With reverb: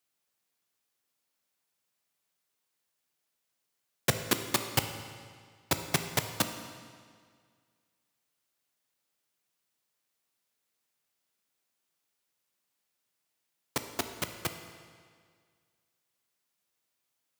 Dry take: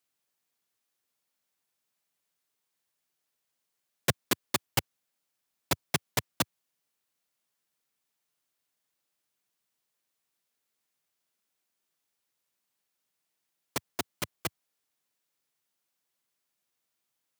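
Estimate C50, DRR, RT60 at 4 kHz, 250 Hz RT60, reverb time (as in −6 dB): 8.0 dB, 7.0 dB, 1.7 s, 1.9 s, 1.9 s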